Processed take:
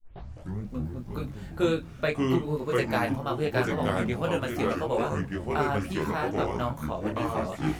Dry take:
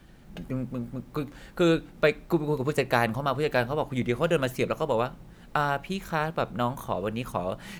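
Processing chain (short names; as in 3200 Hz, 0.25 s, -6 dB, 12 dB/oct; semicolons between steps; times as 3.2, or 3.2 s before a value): tape start at the beginning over 0.70 s; echoes that change speed 0.166 s, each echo -4 st, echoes 3; detuned doubles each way 27 cents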